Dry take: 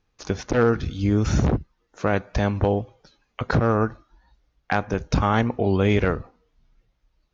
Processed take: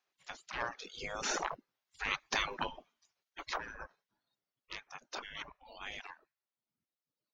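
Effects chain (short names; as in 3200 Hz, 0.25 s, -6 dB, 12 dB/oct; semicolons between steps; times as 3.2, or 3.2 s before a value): Doppler pass-by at 2.28, 5 m/s, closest 3.5 m; spectral gate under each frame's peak -20 dB weak; reverb removal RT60 1.3 s; gain +5 dB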